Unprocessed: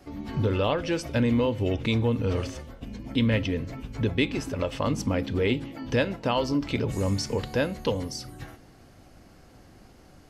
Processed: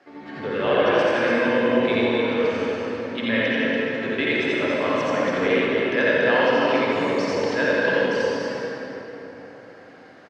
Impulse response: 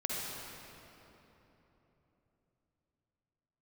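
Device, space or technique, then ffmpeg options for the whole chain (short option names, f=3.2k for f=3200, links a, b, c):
station announcement: -filter_complex "[0:a]highpass=360,lowpass=3.8k,equalizer=f=1.7k:t=o:w=0.39:g=9.5,aecho=1:1:87.46|285.7:0.891|0.631[a];[1:a]atrim=start_sample=2205[b];[a][b]afir=irnorm=-1:irlink=0"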